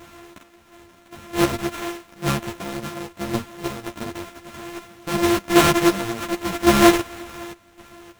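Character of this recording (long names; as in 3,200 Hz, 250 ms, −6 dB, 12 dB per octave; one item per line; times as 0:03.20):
a buzz of ramps at a fixed pitch in blocks of 128 samples
chopped level 0.9 Hz, depth 65%, duty 30%
aliases and images of a low sample rate 4,700 Hz, jitter 20%
a shimmering, thickened sound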